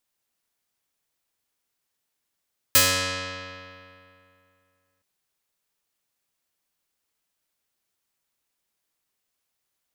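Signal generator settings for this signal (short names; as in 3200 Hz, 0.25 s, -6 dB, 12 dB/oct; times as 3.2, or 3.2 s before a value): plucked string F#2, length 2.27 s, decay 2.57 s, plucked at 0.24, medium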